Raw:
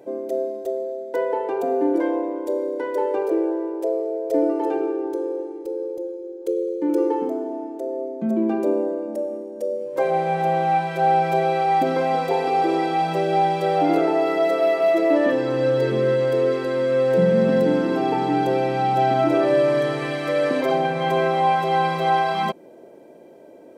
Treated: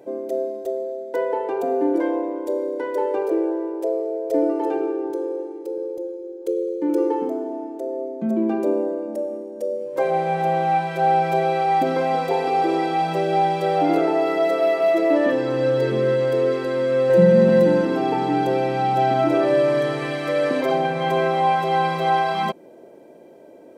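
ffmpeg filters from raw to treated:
-filter_complex "[0:a]asettb=1/sr,asplit=3[a][b][c];[a]atrim=end=5.104[d];[b]atrim=start=5.1:end=5.78,asetpts=PTS-STARTPTS,afade=t=in:d=0.004:c=qsin,afade=t=out:st=0.676:d=0.004:c=qsin,highpass=190[e];[c]atrim=start=5.776[f];[d][e]acrossfade=d=0.004:c1=hsin:c2=qsin[g];[g][f]acrossfade=d=0.004:c1=qsin:c2=hsin,asettb=1/sr,asplit=3[h][i][j];[h]atrim=end=17.094[k];[i]atrim=start=17.09:end=17.85,asetpts=PTS-STARTPTS,afade=t=in:d=0.004:c=qsin,afade=t=out:st=0.756:d=0.004:c=qsin,aecho=1:1:5.6:0.65,atrim=end_sample=33516[l];[j]atrim=start=17.846[m];[k][l]acrossfade=d=0.004:c1=hsin:c2=qsin[n];[n][m]acrossfade=d=0.004:c1=qsin:c2=hsin"

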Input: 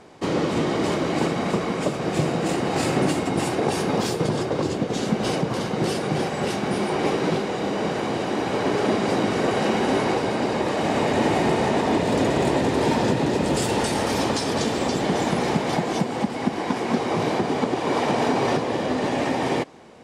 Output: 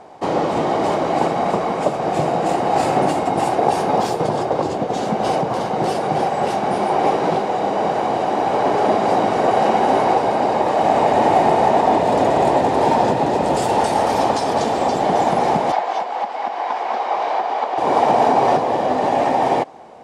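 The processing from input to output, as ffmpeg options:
-filter_complex "[0:a]asettb=1/sr,asplit=3[a][b][c];[a]atrim=end=15.724[d];[b]atrim=start=15.72:end=17.78,asetpts=PTS-STARTPTS,afade=t=in:d=0.004:c=qsin,afade=t=out:st=2.056:d=0.004:c=qsin,highpass=720,lowpass=4.7k[e];[c]atrim=start=17.776[f];[d][e]acrossfade=d=0.004:c1=hsin:c2=qsin[g];[g][f]acrossfade=d=0.004:c1=qsin:c2=hsin,equalizer=f=760:t=o:w=1.1:g=14.5,volume=-2dB"

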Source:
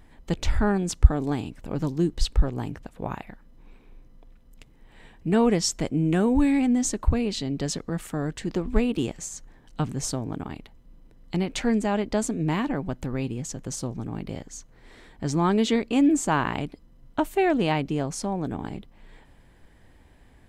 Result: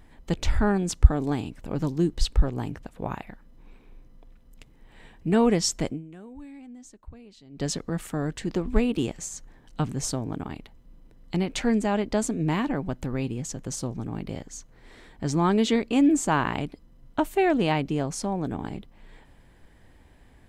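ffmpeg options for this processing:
-filter_complex "[0:a]asplit=3[a][b][c];[a]atrim=end=6.32,asetpts=PTS-STARTPTS,afade=t=out:st=5.92:d=0.4:c=exp:silence=0.0749894[d];[b]atrim=start=6.32:end=7.22,asetpts=PTS-STARTPTS,volume=-22.5dB[e];[c]atrim=start=7.22,asetpts=PTS-STARTPTS,afade=t=in:d=0.4:c=exp:silence=0.0749894[f];[d][e][f]concat=n=3:v=0:a=1"

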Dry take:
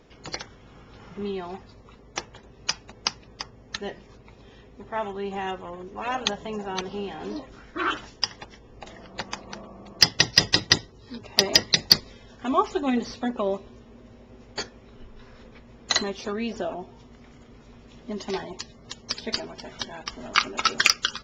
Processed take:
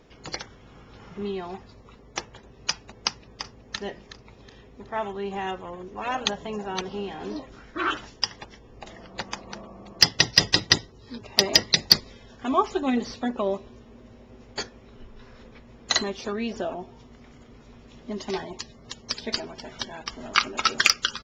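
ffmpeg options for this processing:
-filter_complex "[0:a]asplit=2[a][b];[b]afade=t=in:st=3.07:d=0.01,afade=t=out:st=3.75:d=0.01,aecho=0:1:370|740|1110|1480:0.266073|0.0931254|0.0325939|0.0114079[c];[a][c]amix=inputs=2:normalize=0"

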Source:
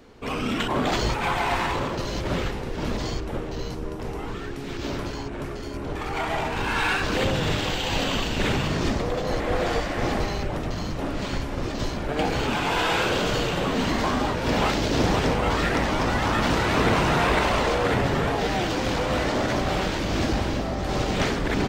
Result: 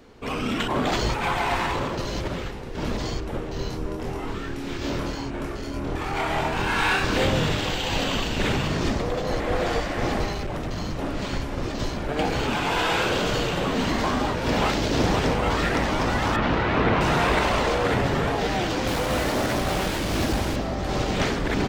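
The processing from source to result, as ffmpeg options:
-filter_complex "[0:a]asettb=1/sr,asplit=3[a][b][c];[a]atrim=end=3.534[d];[b]atrim=start=3.53:end=7.47,asetpts=PTS-STARTPTS,afade=t=in:d=0.004:c=qsin,afade=t=out:st=3.936:d=0.004:c=qsin,asplit=2[e][f];[f]adelay=25,volume=-3dB[g];[e][g]amix=inputs=2:normalize=0,atrim=end_sample=173754[h];[c]atrim=start=7.466[i];[d][h]acrossfade=d=0.004:c1=hsin:c2=qsin[j];[j][i]acrossfade=d=0.004:c1=qsin:c2=hsin,asettb=1/sr,asplit=3[k][l][m];[k]atrim=end=10.324[n];[l]atrim=start=10.32:end=10.76,asetpts=PTS-STARTPTS,afade=t=in:d=0.004:c=qsin,afade=t=out:st=0.436:d=0.004:c=qsin,asoftclip=type=hard:threshold=-24.5dB[o];[m]atrim=start=10.756[p];[n][o]acrossfade=d=0.004:c1=hsin:c2=qsin[q];[q][p]acrossfade=d=0.004:c1=qsin:c2=hsin,asettb=1/sr,asplit=3[r][s][t];[r]atrim=end=16.364[u];[s]atrim=start=16.36:end=17.01,asetpts=PTS-STARTPTS,afade=t=in:d=0.004:c=qsin,afade=t=out:st=0.646:d=0.004:c=qsin,lowpass=3k[v];[t]atrim=start=17.006[w];[u][v]acrossfade=d=0.004:c1=hsin:c2=qsin[x];[x][w]acrossfade=d=0.004:c1=qsin:c2=hsin,asettb=1/sr,asplit=3[y][z][aa];[y]atrim=end=18.874[ab];[z]atrim=start=18.87:end=20.56,asetpts=PTS-STARTPTS,afade=t=in:d=0.004:c=qsin,afade=t=out:st=1.686:d=0.004:c=qsin,acrusher=bits=4:mix=0:aa=0.5[ac];[aa]atrim=start=20.556[ad];[ab][ac]acrossfade=d=0.004:c1=hsin:c2=qsin[ae];[ae][ad]acrossfade=d=0.004:c1=qsin:c2=hsin,asplit=3[af][ag][ah];[af]atrim=end=2.282[ai];[ag]atrim=start=2.278:end=2.752,asetpts=PTS-STARTPTS,volume=-4.5dB[aj];[ah]atrim=start=2.748[ak];[ai][aj]acrossfade=d=0.004:c1=hsin:c2=hsin[al];[al][ak]acrossfade=d=0.004:c1=hsin:c2=hsin"

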